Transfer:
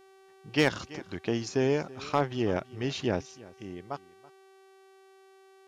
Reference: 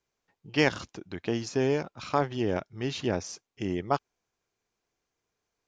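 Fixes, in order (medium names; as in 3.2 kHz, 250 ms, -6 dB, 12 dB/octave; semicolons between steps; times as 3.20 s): clip repair -14.5 dBFS; de-hum 384.6 Hz, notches 33; inverse comb 330 ms -20.5 dB; gain correction +10.5 dB, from 3.21 s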